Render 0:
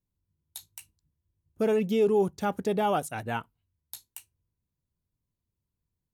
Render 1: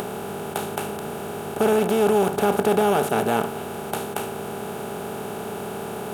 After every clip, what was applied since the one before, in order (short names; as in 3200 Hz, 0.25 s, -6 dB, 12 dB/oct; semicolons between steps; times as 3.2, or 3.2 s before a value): per-bin compression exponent 0.2; upward compressor, threshold -28 dBFS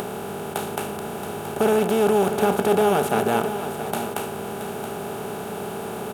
echo 0.675 s -10.5 dB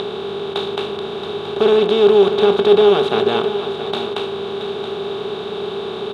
synth low-pass 3700 Hz, resonance Q 9.2; small resonant body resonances 400/1100 Hz, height 12 dB, ringing for 50 ms; gain -1 dB